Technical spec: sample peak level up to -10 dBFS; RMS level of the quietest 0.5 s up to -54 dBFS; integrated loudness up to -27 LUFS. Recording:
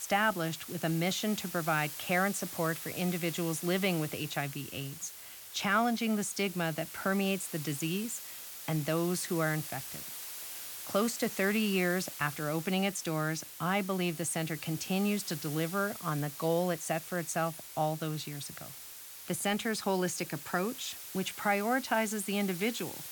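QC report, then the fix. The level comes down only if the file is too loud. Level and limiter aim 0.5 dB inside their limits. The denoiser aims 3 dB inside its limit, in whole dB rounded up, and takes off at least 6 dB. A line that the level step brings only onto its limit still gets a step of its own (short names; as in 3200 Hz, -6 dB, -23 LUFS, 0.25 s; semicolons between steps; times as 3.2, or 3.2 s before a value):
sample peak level -16.0 dBFS: OK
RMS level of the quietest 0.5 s -48 dBFS: fail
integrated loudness -32.5 LUFS: OK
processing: denoiser 9 dB, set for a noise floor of -48 dBFS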